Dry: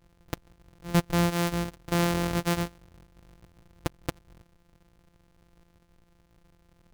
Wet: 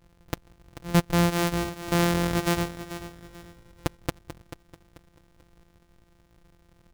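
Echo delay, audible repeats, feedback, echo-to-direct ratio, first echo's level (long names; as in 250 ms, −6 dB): 438 ms, 3, 32%, −12.0 dB, −12.5 dB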